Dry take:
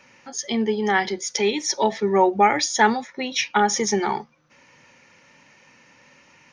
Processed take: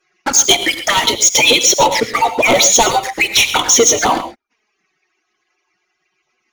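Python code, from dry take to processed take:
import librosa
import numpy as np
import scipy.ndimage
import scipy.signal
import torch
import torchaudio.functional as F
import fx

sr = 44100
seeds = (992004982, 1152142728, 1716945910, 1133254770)

y = fx.hpss_only(x, sr, part='percussive')
y = fx.low_shelf(y, sr, hz=83.0, db=-10.0)
y = fx.leveller(y, sr, passes=5)
y = fx.rider(y, sr, range_db=10, speed_s=2.0)
y = fx.env_flanger(y, sr, rest_ms=5.5, full_db=-12.5)
y = fx.fold_sine(y, sr, drive_db=4, ceiling_db=-3.0)
y = fx.rev_gated(y, sr, seeds[0], gate_ms=150, shape='rising', drr_db=10.0)
y = y * librosa.db_to_amplitude(-2.0)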